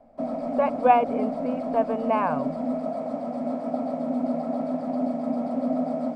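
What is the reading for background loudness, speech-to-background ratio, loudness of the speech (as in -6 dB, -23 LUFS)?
-28.5 LUFS, 3.5 dB, -25.0 LUFS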